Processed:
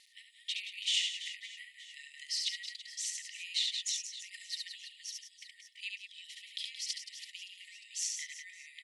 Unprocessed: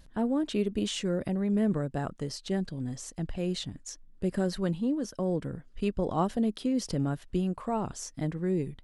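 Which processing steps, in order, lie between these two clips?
high-shelf EQ 6,400 Hz −7 dB
reverse bouncing-ball delay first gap 70 ms, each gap 1.5×, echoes 5
dynamic equaliser 3,500 Hz, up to +5 dB, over −53 dBFS, Q 0.78
downward compressor 4 to 1, threshold −32 dBFS, peak gain reduction 11 dB
linear-phase brick-wall high-pass 1,800 Hz
level +7 dB

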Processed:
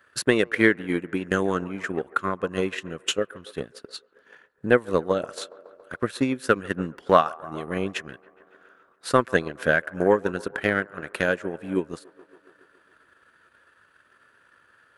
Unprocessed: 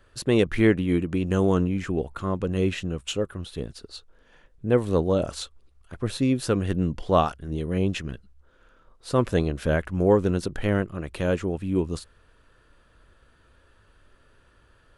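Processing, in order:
high-pass filter 170 Hz 12 dB per octave
parametric band 1,600 Hz +11.5 dB 1.1 octaves
delay with a band-pass on its return 140 ms, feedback 67%, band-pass 750 Hz, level −12.5 dB
transient designer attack +9 dB, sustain −7 dB
high-shelf EQ 8,700 Hz +8 dB
level −5 dB

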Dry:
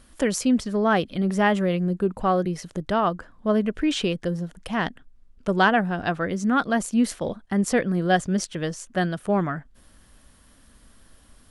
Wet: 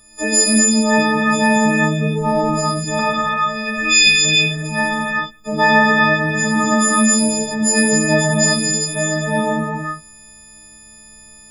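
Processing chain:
every partial snapped to a pitch grid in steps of 6 semitones
0:02.99–0:04.25: drawn EQ curve 140 Hz 0 dB, 260 Hz −13 dB, 610 Hz −8 dB, 2,300 Hz +10 dB, 6,100 Hz +6 dB, 11,000 Hz −2 dB
reverb whose tail is shaped and stops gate 430 ms flat, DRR −6 dB
level −2.5 dB

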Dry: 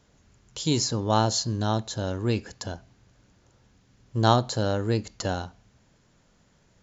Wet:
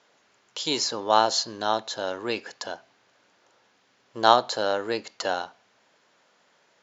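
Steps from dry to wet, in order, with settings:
band-pass filter 550–4,800 Hz
level +5.5 dB

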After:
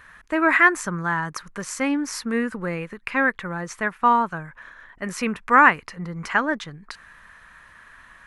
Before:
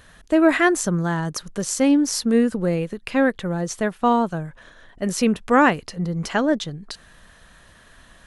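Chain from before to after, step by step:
flat-topped bell 1,500 Hz +12.5 dB
level −7 dB

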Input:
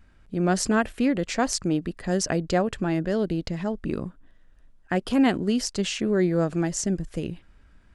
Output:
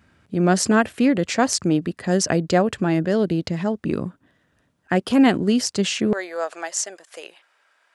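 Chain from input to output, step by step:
high-pass filter 85 Hz 24 dB per octave, from 0:06.13 600 Hz
level +5 dB

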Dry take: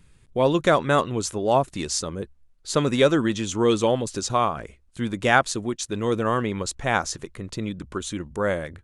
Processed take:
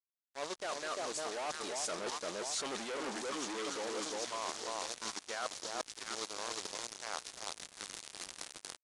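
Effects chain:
source passing by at 0:02.17, 25 m/s, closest 2.2 metres
parametric band 2,700 Hz −2.5 dB 0.77 octaves
noise in a band 3,400–7,000 Hz −61 dBFS
automatic gain control gain up to 13.5 dB
delay that swaps between a low-pass and a high-pass 347 ms, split 1,100 Hz, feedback 54%, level −3 dB
fuzz pedal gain 36 dB, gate −39 dBFS
high-pass filter 350 Hz 12 dB per octave
low-shelf EQ 450 Hz −6 dB
reversed playback
downward compressor 8 to 1, threshold −42 dBFS, peak gain reduction 26.5 dB
reversed playback
level +5 dB
IMA ADPCM 88 kbit/s 22,050 Hz

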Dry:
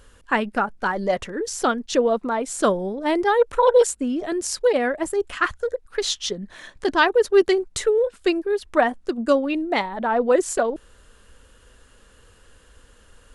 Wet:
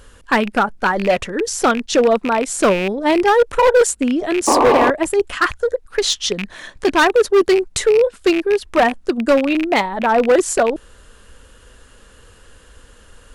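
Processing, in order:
loose part that buzzes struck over −33 dBFS, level −20 dBFS
sound drawn into the spectrogram noise, 0:04.47–0:04.91, 230–1,200 Hz −19 dBFS
hard clipping −14.5 dBFS, distortion −12 dB
level +6.5 dB

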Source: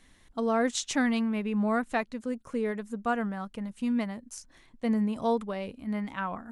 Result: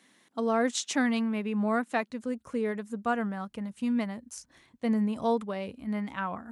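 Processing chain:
high-pass filter 180 Hz 24 dB per octave, from 0:02.10 55 Hz

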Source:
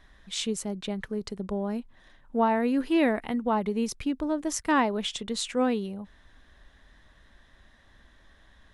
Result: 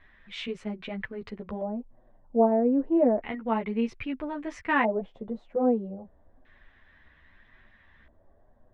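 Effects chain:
auto-filter low-pass square 0.31 Hz 630–2,300 Hz
multi-voice chorus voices 2, 0.99 Hz, delay 11 ms, depth 3 ms

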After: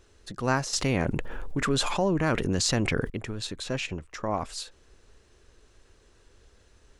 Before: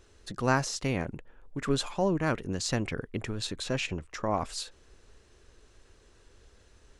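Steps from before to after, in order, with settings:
0:00.73–0:03.10: envelope flattener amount 70%

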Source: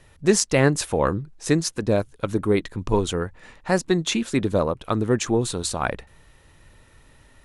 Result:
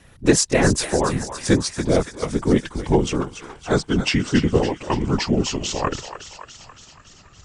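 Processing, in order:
pitch glide at a constant tempo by −7 semitones starting unshifted
feedback echo with a high-pass in the loop 282 ms, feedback 69%, high-pass 800 Hz, level −9.5 dB
random phases in short frames
level +3.5 dB

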